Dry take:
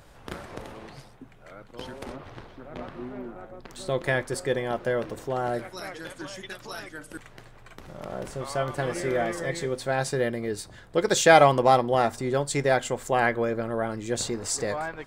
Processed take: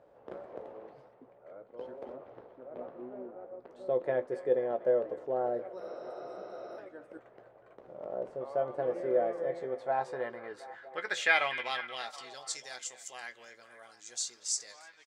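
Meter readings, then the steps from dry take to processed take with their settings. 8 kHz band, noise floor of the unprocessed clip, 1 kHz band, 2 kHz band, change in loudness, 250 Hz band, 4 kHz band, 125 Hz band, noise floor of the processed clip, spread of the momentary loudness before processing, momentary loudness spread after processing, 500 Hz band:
−6.5 dB, −50 dBFS, −12.0 dB, −6.0 dB, −9.0 dB, −14.0 dB, −7.0 dB, −22.0 dB, −60 dBFS, 20 LU, 20 LU, −7.5 dB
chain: healed spectral selection 0:05.84–0:06.75, 230–7,700 Hz before
double-tracking delay 16 ms −11 dB
band-pass filter sweep 530 Hz → 6,000 Hz, 0:09.42–0:12.63
on a send: echo through a band-pass that steps 241 ms, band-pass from 2,500 Hz, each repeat −0.7 octaves, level −10 dB

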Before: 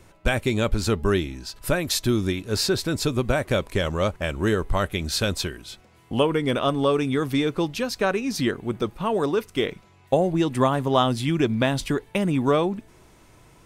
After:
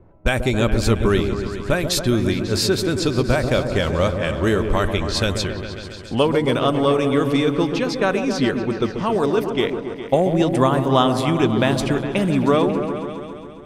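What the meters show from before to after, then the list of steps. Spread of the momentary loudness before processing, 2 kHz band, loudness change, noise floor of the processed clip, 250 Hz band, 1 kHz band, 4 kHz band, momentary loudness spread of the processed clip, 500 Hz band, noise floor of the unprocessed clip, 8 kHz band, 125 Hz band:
6 LU, +3.5 dB, +4.0 dB, −35 dBFS, +5.0 dB, +4.0 dB, +3.0 dB, 7 LU, +4.5 dB, −54 dBFS, +2.0 dB, +4.5 dB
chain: low-pass that shuts in the quiet parts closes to 710 Hz, open at −20 dBFS
echo whose low-pass opens from repeat to repeat 136 ms, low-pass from 750 Hz, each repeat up 1 octave, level −6 dB
level +3 dB

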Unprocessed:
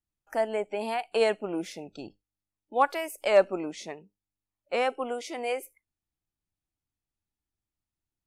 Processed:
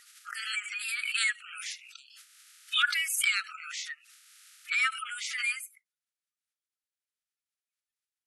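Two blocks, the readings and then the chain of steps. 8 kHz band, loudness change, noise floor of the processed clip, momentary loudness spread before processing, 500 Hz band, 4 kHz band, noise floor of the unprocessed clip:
+11.0 dB, −1.0 dB, below −85 dBFS, 19 LU, below −40 dB, +9.0 dB, below −85 dBFS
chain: spectral magnitudes quantised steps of 30 dB
linear-phase brick-wall band-pass 1,200–12,000 Hz
background raised ahead of every attack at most 46 dB per second
level +5.5 dB

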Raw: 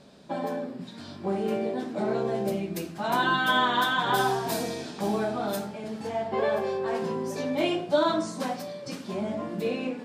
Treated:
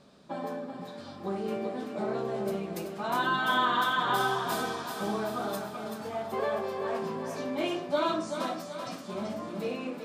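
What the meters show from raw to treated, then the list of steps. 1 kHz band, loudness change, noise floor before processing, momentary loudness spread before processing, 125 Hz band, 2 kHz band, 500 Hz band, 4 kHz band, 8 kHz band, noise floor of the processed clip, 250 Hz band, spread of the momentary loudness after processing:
−2.0 dB, −3.5 dB, −43 dBFS, 12 LU, −5.0 dB, −3.0 dB, −4.5 dB, −4.0 dB, −4.0 dB, −44 dBFS, −4.5 dB, 11 LU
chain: parametric band 1,200 Hz +8 dB 0.24 octaves
on a send: feedback echo with a high-pass in the loop 383 ms, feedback 55%, high-pass 330 Hz, level −6.5 dB
on the sum: level −5 dB

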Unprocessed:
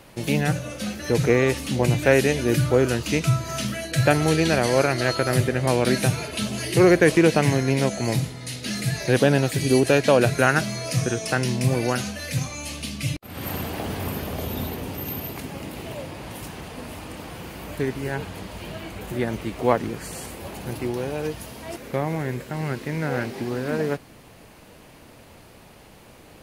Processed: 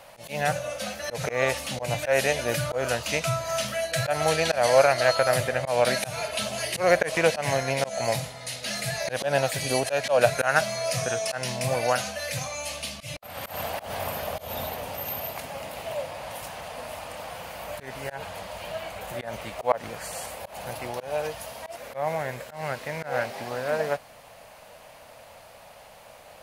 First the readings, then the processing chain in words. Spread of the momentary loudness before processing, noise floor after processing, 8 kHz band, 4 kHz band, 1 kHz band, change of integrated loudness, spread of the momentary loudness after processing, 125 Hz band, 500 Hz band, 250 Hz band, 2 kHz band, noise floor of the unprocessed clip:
17 LU, −49 dBFS, −0.5 dB, −0.5 dB, +0.5 dB, −4.5 dB, 15 LU, −11.0 dB, −2.5 dB, −14.0 dB, −2.0 dB, −48 dBFS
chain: low shelf with overshoot 460 Hz −9 dB, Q 3
volume swells 139 ms

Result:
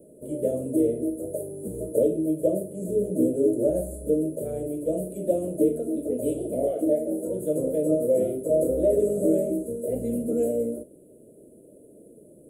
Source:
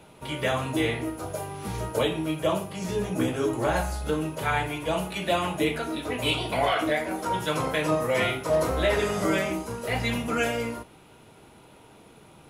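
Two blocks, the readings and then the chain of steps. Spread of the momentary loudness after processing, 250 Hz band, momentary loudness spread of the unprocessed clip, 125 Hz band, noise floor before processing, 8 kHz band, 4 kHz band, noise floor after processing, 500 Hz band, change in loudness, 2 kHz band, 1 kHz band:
8 LU, +4.0 dB, 7 LU, −5.0 dB, −52 dBFS, −1.5 dB, below −30 dB, −51 dBFS, +4.0 dB, +1.5 dB, below −35 dB, below −15 dB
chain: drawn EQ curve 120 Hz 0 dB, 260 Hz +12 dB, 600 Hz +13 dB, 870 Hz −28 dB, 1,900 Hz −29 dB, 3,000 Hz −25 dB, 5,400 Hz −27 dB, 8,100 Hz +8 dB
level −7.5 dB

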